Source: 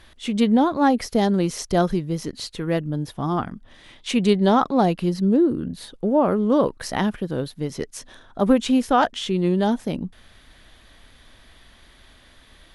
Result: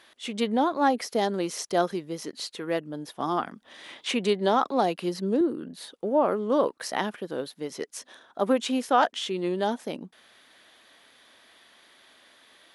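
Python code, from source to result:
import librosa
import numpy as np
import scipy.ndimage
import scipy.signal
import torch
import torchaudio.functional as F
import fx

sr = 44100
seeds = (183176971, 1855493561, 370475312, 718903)

y = scipy.signal.sosfilt(scipy.signal.butter(2, 350.0, 'highpass', fs=sr, output='sos'), x)
y = fx.band_squash(y, sr, depth_pct=40, at=(3.2, 5.41))
y = y * 10.0 ** (-2.5 / 20.0)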